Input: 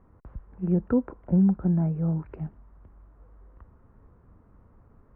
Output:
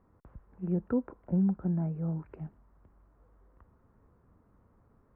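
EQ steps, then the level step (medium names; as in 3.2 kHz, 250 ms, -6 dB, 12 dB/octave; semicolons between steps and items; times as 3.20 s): bass shelf 73 Hz -8 dB; -5.5 dB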